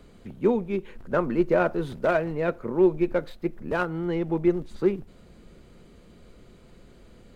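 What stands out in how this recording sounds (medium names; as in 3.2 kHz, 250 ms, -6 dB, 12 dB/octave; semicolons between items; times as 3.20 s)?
noise floor -52 dBFS; spectral tilt -4.0 dB/octave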